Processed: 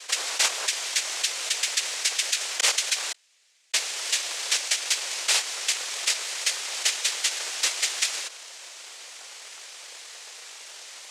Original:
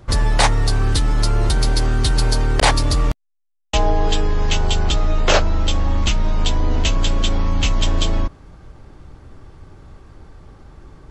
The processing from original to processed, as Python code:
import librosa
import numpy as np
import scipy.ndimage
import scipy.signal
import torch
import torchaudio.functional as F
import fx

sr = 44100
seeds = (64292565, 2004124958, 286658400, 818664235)

y = scipy.signal.sosfilt(scipy.signal.butter(16, 1900.0, 'highpass', fs=sr, output='sos'), x)
y = fx.noise_vocoder(y, sr, seeds[0], bands=3)
y = fx.env_flatten(y, sr, amount_pct=50)
y = y * 10.0 ** (-2.0 / 20.0)